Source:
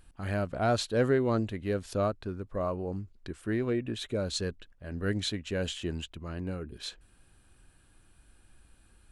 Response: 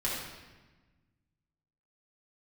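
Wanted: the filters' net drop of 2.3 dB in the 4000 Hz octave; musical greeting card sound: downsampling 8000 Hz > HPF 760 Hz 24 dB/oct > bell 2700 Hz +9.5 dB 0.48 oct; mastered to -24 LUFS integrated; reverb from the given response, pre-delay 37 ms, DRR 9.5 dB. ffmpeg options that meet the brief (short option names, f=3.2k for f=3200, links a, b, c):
-filter_complex "[0:a]equalizer=f=4k:t=o:g=-7,asplit=2[a][b];[1:a]atrim=start_sample=2205,adelay=37[c];[b][c]afir=irnorm=-1:irlink=0,volume=-16.5dB[d];[a][d]amix=inputs=2:normalize=0,aresample=8000,aresample=44100,highpass=f=760:w=0.5412,highpass=f=760:w=1.3066,equalizer=f=2.7k:t=o:w=0.48:g=9.5,volume=16dB"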